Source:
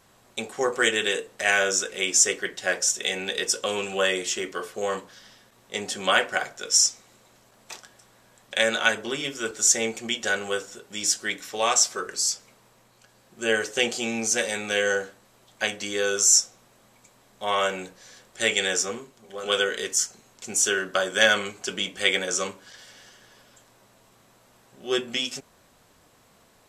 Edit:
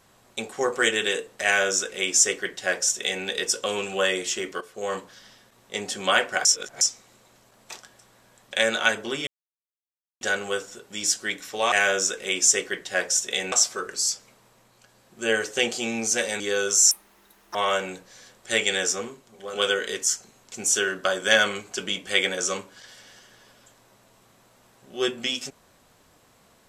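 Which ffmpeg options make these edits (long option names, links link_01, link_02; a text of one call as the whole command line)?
ffmpeg -i in.wav -filter_complex "[0:a]asplit=11[link_01][link_02][link_03][link_04][link_05][link_06][link_07][link_08][link_09][link_10][link_11];[link_01]atrim=end=4.61,asetpts=PTS-STARTPTS,afade=type=out:start_time=4.606:duration=0.004:curve=hsin:silence=0.237137[link_12];[link_02]atrim=start=4.61:end=6.452,asetpts=PTS-STARTPTS,afade=type=in:duration=0.35:silence=0.237137[link_13];[link_03]atrim=start=6.448:end=6.812,asetpts=PTS-STARTPTS,areverse[link_14];[link_04]atrim=start=6.808:end=9.27,asetpts=PTS-STARTPTS,afade=type=out:start_time=2.458:duration=0.004:curve=hsin[link_15];[link_05]atrim=start=9.27:end=10.21,asetpts=PTS-STARTPTS,volume=0[link_16];[link_06]atrim=start=10.21:end=11.722,asetpts=PTS-STARTPTS,afade=type=in:duration=0.004:curve=hsin[link_17];[link_07]atrim=start=1.438:end=3.242[link_18];[link_08]atrim=start=11.718:end=14.602[link_19];[link_09]atrim=start=15.878:end=16.394[link_20];[link_10]atrim=start=16.39:end=17.45,asetpts=PTS-STARTPTS,asetrate=73206,aresample=44100,atrim=end_sample=28160,asetpts=PTS-STARTPTS[link_21];[link_11]atrim=start=17.446[link_22];[link_12][link_13]concat=n=2:v=0:a=1[link_23];[link_23][link_14]acrossfade=duration=0.004:curve1=hsin:curve2=hsin[link_24];[link_15][link_16][link_17]concat=n=3:v=0:a=1[link_25];[link_24][link_25]acrossfade=duration=0.004:curve1=hsin:curve2=hsin[link_26];[link_26][link_18]acrossfade=duration=0.004:curve1=hsin:curve2=hsin[link_27];[link_27][link_19]acrossfade=duration=0.004:curve1=hsin:curve2=hsin[link_28];[link_28][link_20]acrossfade=duration=0.004:curve1=hsin:curve2=hsin[link_29];[link_29][link_21]acrossfade=duration=0.004:curve1=hsin:curve2=hsin[link_30];[link_30][link_22]acrossfade=duration=0.004:curve1=hsin:curve2=hsin" out.wav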